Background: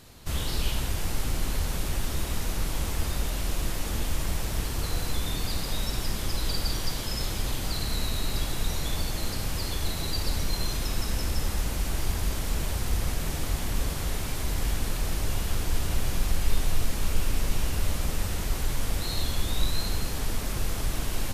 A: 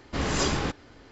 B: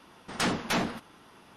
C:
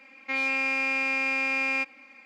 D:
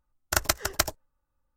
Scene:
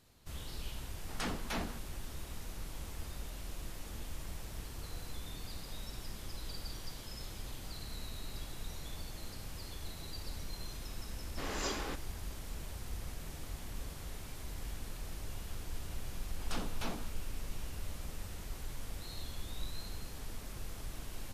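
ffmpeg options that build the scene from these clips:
ffmpeg -i bed.wav -i cue0.wav -i cue1.wav -filter_complex "[2:a]asplit=2[link_01][link_02];[0:a]volume=-15dB[link_03];[1:a]highpass=280[link_04];[link_02]equalizer=frequency=1900:width=4.3:gain=-7.5[link_05];[link_01]atrim=end=1.56,asetpts=PTS-STARTPTS,volume=-11dB,afade=type=in:duration=0.004:curve=hsin,afade=type=out:start_time=1.556:duration=0.004:curve=hsin,adelay=800[link_06];[link_04]atrim=end=1.11,asetpts=PTS-STARTPTS,volume=-10.5dB,afade=type=in:duration=0.004:curve=hsin,afade=type=out:start_time=1.106:duration=0.004:curve=hsin,adelay=11240[link_07];[link_05]atrim=end=1.56,asetpts=PTS-STARTPTS,volume=-13dB,afade=type=in:duration=0.004:curve=hsin,afade=type=out:start_time=1.556:duration=0.004:curve=hsin,adelay=16110[link_08];[link_03][link_06][link_07][link_08]amix=inputs=4:normalize=0" out.wav

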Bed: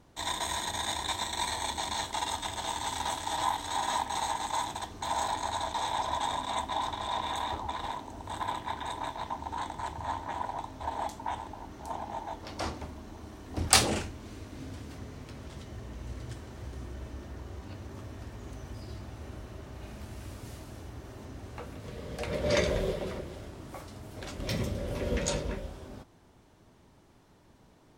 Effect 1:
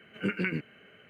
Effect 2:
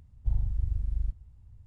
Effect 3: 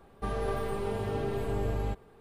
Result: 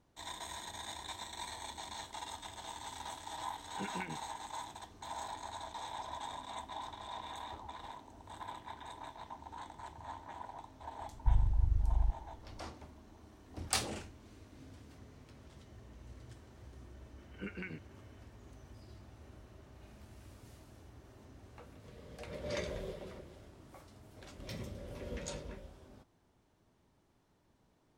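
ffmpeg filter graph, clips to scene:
ffmpeg -i bed.wav -i cue0.wav -i cue1.wav -filter_complex "[1:a]asplit=2[link_01][link_02];[0:a]volume=-12dB[link_03];[link_01]atrim=end=1.09,asetpts=PTS-STARTPTS,volume=-13dB,afade=type=in:duration=0.004:curve=hsin,afade=type=out:start_time=1.086:duration=0.004:curve=hsin,adelay=3560[link_04];[2:a]atrim=end=1.66,asetpts=PTS-STARTPTS,volume=-1dB,afade=type=in:duration=0.004:curve=hsin,afade=type=out:start_time=1.656:duration=0.004:curve=hsin,adelay=11000[link_05];[link_02]atrim=end=1.09,asetpts=PTS-STARTPTS,volume=-13.5dB,afade=type=in:duration=0.004:curve=hsin,afade=type=out:start_time=1.086:duration=0.004:curve=hsin,adelay=17180[link_06];[link_03][link_04][link_05][link_06]amix=inputs=4:normalize=0" out.wav

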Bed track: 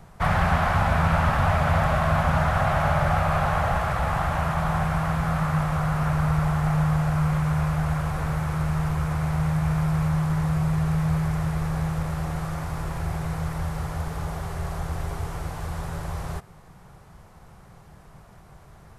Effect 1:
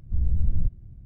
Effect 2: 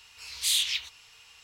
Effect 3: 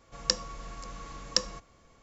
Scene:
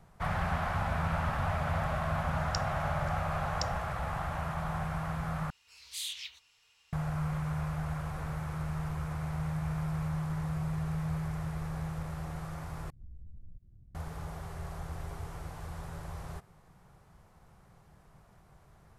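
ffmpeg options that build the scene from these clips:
ffmpeg -i bed.wav -i cue0.wav -i cue1.wav -i cue2.wav -filter_complex "[0:a]volume=-10.5dB[link_01];[1:a]acompressor=threshold=-32dB:ratio=6:attack=3.2:release=140:knee=1:detection=peak[link_02];[link_01]asplit=3[link_03][link_04][link_05];[link_03]atrim=end=5.504[link_06];[2:a]atrim=end=1.43,asetpts=PTS-STARTPTS,volume=-13dB[link_07];[link_04]atrim=start=6.926:end=12.904[link_08];[link_02]atrim=end=1.05,asetpts=PTS-STARTPTS,volume=-12.5dB[link_09];[link_05]atrim=start=13.946[link_10];[3:a]atrim=end=2.02,asetpts=PTS-STARTPTS,volume=-12dB,afade=type=in:duration=0.004:curve=hsin,afade=type=out:start_time=2.016:duration=0.004:curve=hsin,adelay=2250[link_11];[link_06][link_07]acrossfade=duration=0.004:curve1=hsin:curve2=hsin[link_12];[link_12][link_08]acrossfade=duration=0.004:curve1=hsin:curve2=hsin[link_13];[link_13][link_09]acrossfade=duration=0.004:curve1=hsin:curve2=hsin[link_14];[link_14][link_10]acrossfade=duration=0.004:curve1=hsin:curve2=hsin[link_15];[link_15][link_11]amix=inputs=2:normalize=0" out.wav

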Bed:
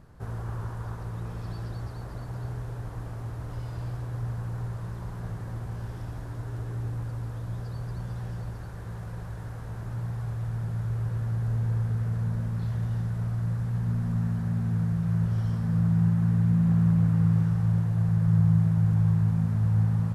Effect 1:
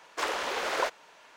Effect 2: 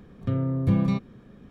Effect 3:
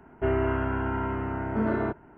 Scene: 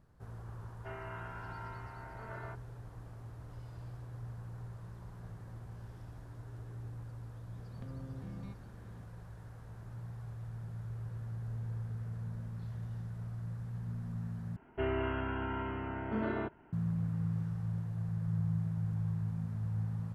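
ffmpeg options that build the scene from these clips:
ffmpeg -i bed.wav -i cue0.wav -i cue1.wav -i cue2.wav -filter_complex "[3:a]asplit=2[link_01][link_02];[0:a]volume=-12.5dB[link_03];[link_01]highpass=790[link_04];[2:a]acompressor=threshold=-35dB:ratio=6:attack=3.2:release=140:knee=1:detection=peak[link_05];[link_02]equalizer=frequency=3200:width=1.4:gain=10[link_06];[link_03]asplit=2[link_07][link_08];[link_07]atrim=end=14.564[link_09];[link_06]atrim=end=2.17,asetpts=PTS-STARTPTS,volume=-8.5dB[link_10];[link_08]atrim=start=16.726[link_11];[link_04]atrim=end=2.17,asetpts=PTS-STARTPTS,volume=-12dB,afade=type=in:duration=0.004:curve=hsin,afade=type=out:start_time=2.166:duration=0.004:curve=hsin,adelay=630[link_12];[link_05]atrim=end=1.5,asetpts=PTS-STARTPTS,volume=-9.5dB,afade=type=in:duration=0.004:curve=hsin,afade=type=out:start_time=1.496:duration=0.004:curve=hsin,adelay=7550[link_13];[link_09][link_10]acrossfade=duration=0.004:curve1=hsin:curve2=hsin[link_14];[link_14][link_11]acrossfade=duration=0.004:curve1=hsin:curve2=hsin[link_15];[link_15][link_12][link_13]amix=inputs=3:normalize=0" out.wav

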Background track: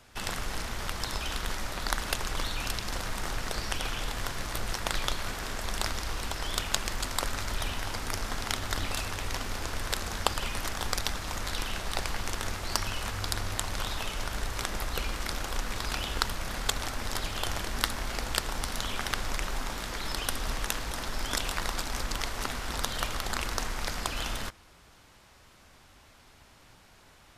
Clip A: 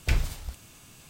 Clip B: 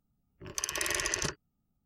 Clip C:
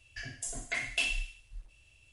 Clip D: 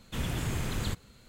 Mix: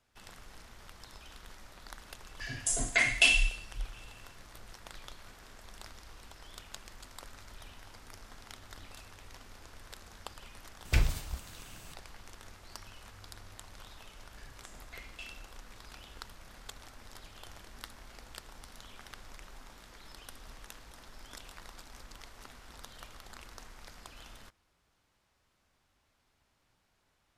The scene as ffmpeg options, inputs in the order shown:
ffmpeg -i bed.wav -i cue0.wav -i cue1.wav -i cue2.wav -filter_complex "[3:a]asplit=2[link_01][link_02];[0:a]volume=-18dB[link_03];[link_01]dynaudnorm=framelen=120:gausssize=5:maxgain=12dB[link_04];[link_02]lowpass=7100[link_05];[link_04]atrim=end=2.12,asetpts=PTS-STARTPTS,volume=-4dB,afade=type=in:duration=0.004:curve=hsin,afade=type=out:start_time=2.116:duration=0.004:curve=hsin,adelay=2240[link_06];[1:a]atrim=end=1.09,asetpts=PTS-STARTPTS,volume=-1.5dB,afade=type=in:duration=0.004:curve=hsin,afade=type=out:start_time=1.086:duration=0.004:curve=hsin,adelay=10850[link_07];[link_05]atrim=end=2.12,asetpts=PTS-STARTPTS,volume=-16.5dB,afade=type=in:duration=0.004:curve=hsin,afade=type=out:start_time=2.116:duration=0.004:curve=hsin,adelay=14210[link_08];[link_03][link_06][link_07][link_08]amix=inputs=4:normalize=0" out.wav

